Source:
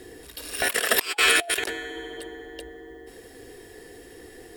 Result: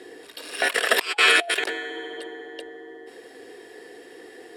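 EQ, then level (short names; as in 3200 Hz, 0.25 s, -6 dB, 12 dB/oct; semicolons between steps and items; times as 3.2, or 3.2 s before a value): HPF 330 Hz 12 dB/oct; air absorption 55 m; bell 6300 Hz -4.5 dB 0.44 oct; +3.5 dB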